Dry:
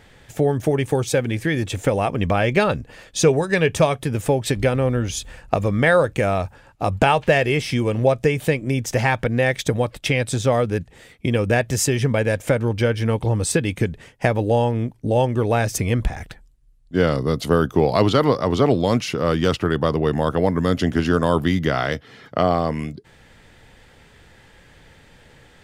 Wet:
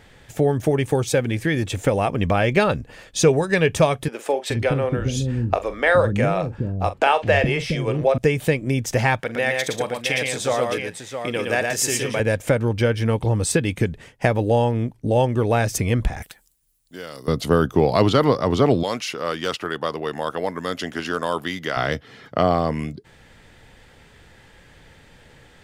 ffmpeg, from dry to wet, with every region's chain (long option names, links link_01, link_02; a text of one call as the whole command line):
ffmpeg -i in.wav -filter_complex "[0:a]asettb=1/sr,asplit=3[link_01][link_02][link_03];[link_01]atrim=end=4.084[link_04];[link_02]atrim=start=4.08:end=8.18,asetpts=PTS-STARTPTS,afade=type=in:duration=0.004:curve=qsin,afade=type=out:start_time=4.096:duration=0.004:curve=qsin,highshelf=frequency=8100:gain=-11.5,asplit=2[link_05][link_06];[link_06]adelay=43,volume=-12dB[link_07];[link_05][link_07]amix=inputs=2:normalize=0,atrim=end_sample=180810,acrossover=split=340[link_08][link_09];[link_08]adelay=420[link_10];[link_10][link_09]amix=inputs=2:normalize=0,atrim=end_sample=180810[link_11];[link_03]atrim=start=8.176[link_12];[link_04][link_11]acrossfade=duration=0.004:curve1=hsin:curve2=qsin[link_13];[link_13][link_12]acrossfade=duration=0.004:curve1=qsin:curve2=hsin,asettb=1/sr,asplit=3[link_14][link_15][link_16];[link_14]atrim=end=9.204[link_17];[link_15]atrim=start=9.2:end=12.2,asetpts=PTS-STARTPTS,afade=type=in:duration=0.004:curve=qsin,afade=type=out:start_time=2.996:duration=0.004:curve=qsin,highpass=frequency=640:poles=1,aecho=1:1:45|117|146|668:0.178|0.668|0.158|0.422,atrim=end_sample=132300[link_18];[link_16]atrim=start=12.196[link_19];[link_17][link_18]acrossfade=duration=0.004:curve1=hsin:curve2=qsin[link_20];[link_20][link_19]acrossfade=duration=0.004:curve1=qsin:curve2=hsin,asettb=1/sr,asplit=3[link_21][link_22][link_23];[link_21]atrim=end=16.224[link_24];[link_22]atrim=start=16.22:end=17.28,asetpts=PTS-STARTPTS,afade=type=in:duration=0.004:curve=qsin,afade=type=out:start_time=1.056:duration=0.004:curve=qsin,aemphasis=mode=production:type=riaa,acompressor=threshold=-42dB:ratio=2:attack=3.2:release=140:knee=1:detection=peak[link_25];[link_23]atrim=start=17.276[link_26];[link_24][link_25]acrossfade=duration=0.004:curve1=hsin:curve2=qsin[link_27];[link_27][link_26]acrossfade=duration=0.004:curve1=qsin:curve2=hsin,asettb=1/sr,asplit=3[link_28][link_29][link_30];[link_28]atrim=end=18.834[link_31];[link_29]atrim=start=18.83:end=21.77,asetpts=PTS-STARTPTS,afade=type=in:duration=0.004:curve=qsin,afade=type=out:start_time=2.936:duration=0.004:curve=qsin,highpass=frequency=810:poles=1,asoftclip=type=hard:threshold=-11.5dB[link_32];[link_30]atrim=start=21.766[link_33];[link_31][link_32]acrossfade=duration=0.004:curve1=hsin:curve2=qsin[link_34];[link_34][link_33]acrossfade=duration=0.004:curve1=qsin:curve2=hsin" out.wav